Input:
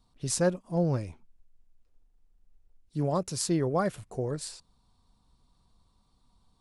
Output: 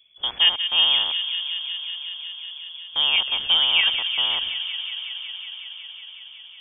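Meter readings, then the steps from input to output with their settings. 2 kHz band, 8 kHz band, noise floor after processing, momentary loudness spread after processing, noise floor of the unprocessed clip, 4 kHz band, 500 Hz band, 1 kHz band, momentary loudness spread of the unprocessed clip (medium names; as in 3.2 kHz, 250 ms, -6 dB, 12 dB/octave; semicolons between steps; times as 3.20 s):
+18.5 dB, under -40 dB, -44 dBFS, 18 LU, -69 dBFS, +28.5 dB, -14.5 dB, +2.0 dB, 12 LU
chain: rattle on loud lows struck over -44 dBFS, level -30 dBFS; frequency inversion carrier 3.4 kHz; feedback echo behind a high-pass 184 ms, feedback 84%, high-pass 1.9 kHz, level -8.5 dB; trim +7 dB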